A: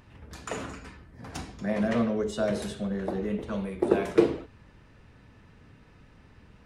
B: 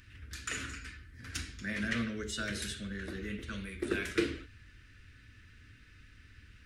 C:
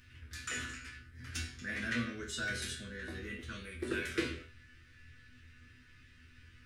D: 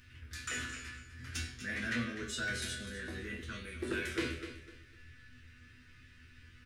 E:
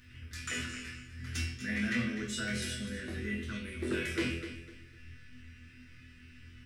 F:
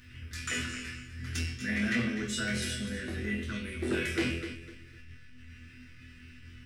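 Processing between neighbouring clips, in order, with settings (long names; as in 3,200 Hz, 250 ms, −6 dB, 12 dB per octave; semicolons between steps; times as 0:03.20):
drawn EQ curve 100 Hz 0 dB, 160 Hz −13 dB, 290 Hz −6 dB, 850 Hz −26 dB, 1,500 Hz +3 dB
resonators tuned to a chord E2 fifth, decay 0.3 s; level +9.5 dB
repeating echo 250 ms, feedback 26%, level −12.5 dB; soft clipping −26.5 dBFS, distortion −19 dB; level +1 dB
hollow resonant body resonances 210/2,000 Hz, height 7 dB; on a send: flutter between parallel walls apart 4.1 metres, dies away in 0.3 s
saturating transformer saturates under 270 Hz; level +3.5 dB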